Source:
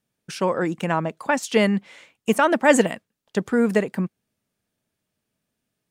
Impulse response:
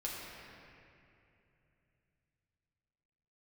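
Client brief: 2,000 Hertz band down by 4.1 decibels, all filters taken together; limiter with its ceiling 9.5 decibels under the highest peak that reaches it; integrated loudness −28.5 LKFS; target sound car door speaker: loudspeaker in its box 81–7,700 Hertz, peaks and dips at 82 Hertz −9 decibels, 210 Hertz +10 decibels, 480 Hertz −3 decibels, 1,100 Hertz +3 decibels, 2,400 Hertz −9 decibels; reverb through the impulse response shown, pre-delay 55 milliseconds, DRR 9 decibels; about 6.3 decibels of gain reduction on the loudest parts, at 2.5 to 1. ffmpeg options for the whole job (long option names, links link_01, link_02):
-filter_complex "[0:a]equalizer=frequency=2000:width_type=o:gain=-3.5,acompressor=threshold=-21dB:ratio=2.5,alimiter=limit=-20dB:level=0:latency=1,asplit=2[link_01][link_02];[1:a]atrim=start_sample=2205,adelay=55[link_03];[link_02][link_03]afir=irnorm=-1:irlink=0,volume=-11dB[link_04];[link_01][link_04]amix=inputs=2:normalize=0,highpass=81,equalizer=frequency=82:width_type=q:width=4:gain=-9,equalizer=frequency=210:width_type=q:width=4:gain=10,equalizer=frequency=480:width_type=q:width=4:gain=-3,equalizer=frequency=1100:width_type=q:width=4:gain=3,equalizer=frequency=2400:width_type=q:width=4:gain=-9,lowpass=frequency=7700:width=0.5412,lowpass=frequency=7700:width=1.3066,volume=-2dB"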